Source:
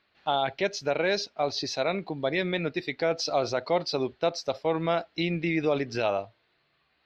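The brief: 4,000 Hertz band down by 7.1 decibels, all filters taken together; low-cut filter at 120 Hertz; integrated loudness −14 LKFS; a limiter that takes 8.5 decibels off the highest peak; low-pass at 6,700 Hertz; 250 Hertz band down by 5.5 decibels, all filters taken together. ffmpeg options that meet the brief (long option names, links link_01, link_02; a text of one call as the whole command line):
ffmpeg -i in.wav -af "highpass=120,lowpass=6700,equalizer=frequency=250:width_type=o:gain=-8.5,equalizer=frequency=4000:width_type=o:gain=-8,volume=21dB,alimiter=limit=-2.5dB:level=0:latency=1" out.wav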